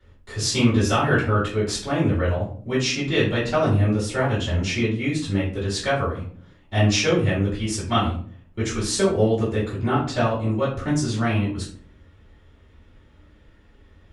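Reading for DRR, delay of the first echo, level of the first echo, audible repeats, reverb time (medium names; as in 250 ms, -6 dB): -11.0 dB, no echo, no echo, no echo, 0.50 s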